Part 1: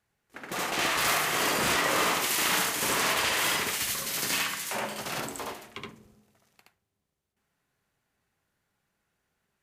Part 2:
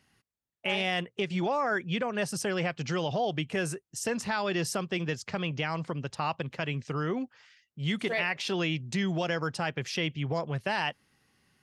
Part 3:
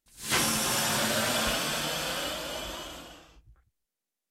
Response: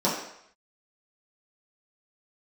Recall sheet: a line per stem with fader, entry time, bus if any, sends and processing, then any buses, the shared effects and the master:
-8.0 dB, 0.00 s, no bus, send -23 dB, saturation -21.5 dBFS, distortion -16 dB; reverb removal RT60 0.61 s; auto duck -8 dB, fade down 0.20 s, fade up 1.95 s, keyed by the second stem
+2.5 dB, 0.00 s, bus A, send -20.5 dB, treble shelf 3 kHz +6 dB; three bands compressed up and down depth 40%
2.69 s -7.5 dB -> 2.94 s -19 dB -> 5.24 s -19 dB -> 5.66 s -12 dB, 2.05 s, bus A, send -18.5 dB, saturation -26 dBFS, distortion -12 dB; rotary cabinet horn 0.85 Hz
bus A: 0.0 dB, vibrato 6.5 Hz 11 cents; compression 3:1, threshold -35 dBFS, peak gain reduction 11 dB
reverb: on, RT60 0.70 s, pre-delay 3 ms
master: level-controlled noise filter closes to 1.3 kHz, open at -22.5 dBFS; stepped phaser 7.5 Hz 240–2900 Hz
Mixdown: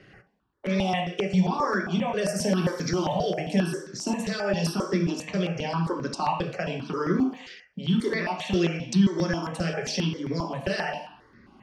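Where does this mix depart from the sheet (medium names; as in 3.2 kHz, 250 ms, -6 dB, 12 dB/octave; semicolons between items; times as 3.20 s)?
stem 1: muted; stem 2 +2.5 dB -> +9.5 dB; stem 3: missing saturation -26 dBFS, distortion -12 dB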